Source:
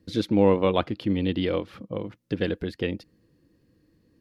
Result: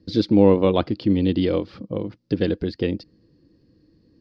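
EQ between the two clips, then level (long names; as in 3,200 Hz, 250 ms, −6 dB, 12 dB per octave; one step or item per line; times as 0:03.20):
low-pass with resonance 4,800 Hz, resonance Q 4.8
tilt shelving filter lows +5 dB
parametric band 320 Hz +2.5 dB 0.81 octaves
0.0 dB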